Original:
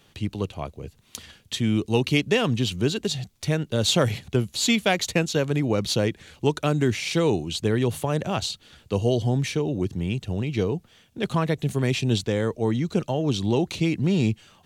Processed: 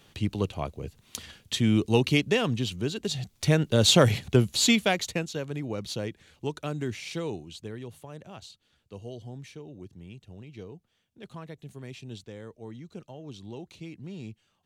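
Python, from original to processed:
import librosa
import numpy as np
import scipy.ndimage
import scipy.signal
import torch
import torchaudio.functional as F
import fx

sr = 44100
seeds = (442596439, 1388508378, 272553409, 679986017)

y = fx.gain(x, sr, db=fx.line((1.9, 0.0), (2.91, -7.0), (3.44, 2.0), (4.56, 2.0), (5.35, -10.0), (7.11, -10.0), (7.94, -18.5)))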